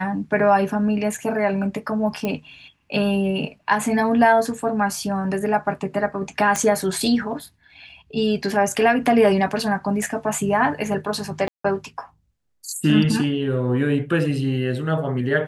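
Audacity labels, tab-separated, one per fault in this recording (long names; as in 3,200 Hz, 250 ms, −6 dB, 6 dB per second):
2.250000	2.250000	click −12 dBFS
6.560000	6.560000	click −8 dBFS
11.480000	11.640000	drop-out 164 ms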